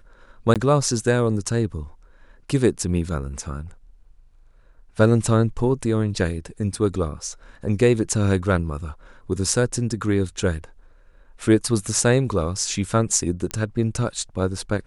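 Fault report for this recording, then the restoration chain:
0:00.54–0:00.56: drop-out 17 ms
0:13.51: click −12 dBFS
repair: click removal
repair the gap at 0:00.54, 17 ms

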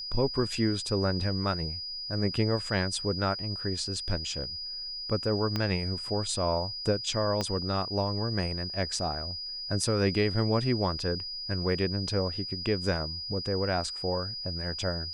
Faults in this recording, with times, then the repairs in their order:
whistle 4,900 Hz −35 dBFS
0:05.56: click −16 dBFS
0:07.41: click −16 dBFS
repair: click removal
notch filter 4,900 Hz, Q 30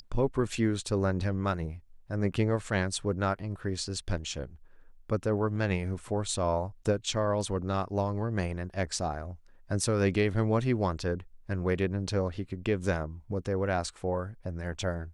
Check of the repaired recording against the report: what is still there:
0:05.56: click
0:07.41: click

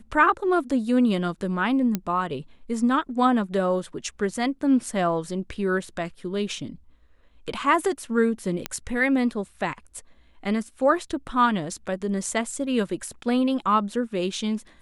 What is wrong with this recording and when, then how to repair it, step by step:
0:01.95: click −11 dBFS
0:08.66: click −10 dBFS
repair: click removal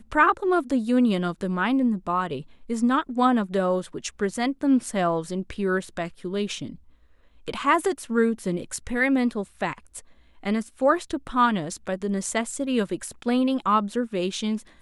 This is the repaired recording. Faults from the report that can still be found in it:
none of them is left

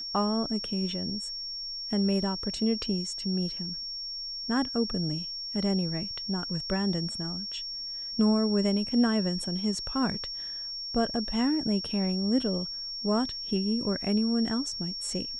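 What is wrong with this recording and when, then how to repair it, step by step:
whistle 5,500 Hz −34 dBFS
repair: notch filter 5,500 Hz, Q 30

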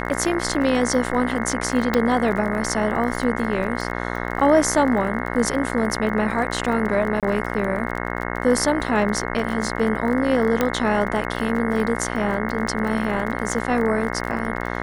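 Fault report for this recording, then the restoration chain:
mains buzz 60 Hz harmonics 36 −27 dBFS
surface crackle 34 per second −28 dBFS
0:01.94: click −7 dBFS
0:07.20–0:07.23: drop-out 27 ms
0:10.61: click −6 dBFS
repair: click removal
hum removal 60 Hz, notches 36
repair the gap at 0:07.20, 27 ms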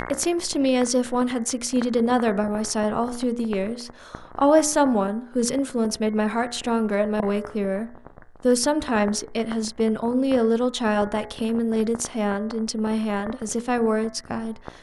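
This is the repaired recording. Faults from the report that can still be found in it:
none of them is left

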